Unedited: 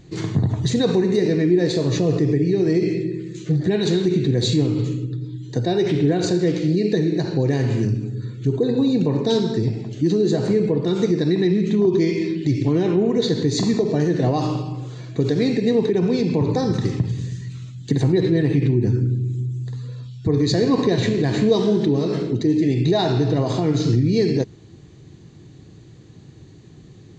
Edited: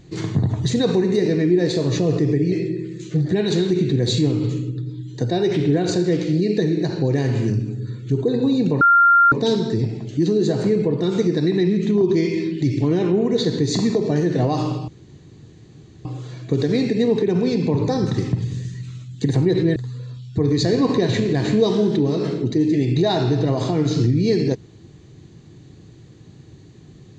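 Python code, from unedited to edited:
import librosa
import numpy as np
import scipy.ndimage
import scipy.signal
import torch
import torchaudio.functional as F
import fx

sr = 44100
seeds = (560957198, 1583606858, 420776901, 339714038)

y = fx.edit(x, sr, fx.cut(start_s=2.52, length_s=0.35),
    fx.insert_tone(at_s=9.16, length_s=0.51, hz=1390.0, db=-9.5),
    fx.insert_room_tone(at_s=14.72, length_s=1.17),
    fx.cut(start_s=18.43, length_s=1.22), tone=tone)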